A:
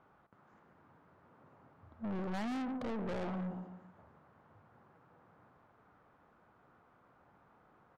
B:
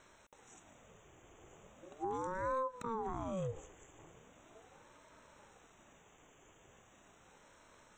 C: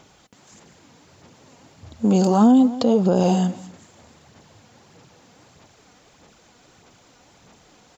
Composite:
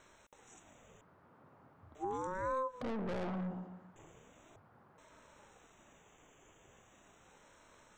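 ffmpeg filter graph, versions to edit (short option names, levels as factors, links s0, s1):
-filter_complex "[0:a]asplit=3[s0][s1][s2];[1:a]asplit=4[s3][s4][s5][s6];[s3]atrim=end=1.012[s7];[s0]atrim=start=1.008:end=1.952[s8];[s4]atrim=start=1.948:end=2.812[s9];[s1]atrim=start=2.808:end=3.962[s10];[s5]atrim=start=3.958:end=4.562[s11];[s2]atrim=start=4.558:end=4.982[s12];[s6]atrim=start=4.978[s13];[s7][s8]acrossfade=d=0.004:c1=hsin:c2=hsin[s14];[s14][s9]acrossfade=d=0.004:c1=hsin:c2=hsin[s15];[s15][s10]acrossfade=d=0.004:c1=hsin:c2=hsin[s16];[s16][s11]acrossfade=d=0.004:c1=hsin:c2=hsin[s17];[s17][s12]acrossfade=d=0.004:c1=hsin:c2=hsin[s18];[s18][s13]acrossfade=d=0.004:c1=hsin:c2=hsin"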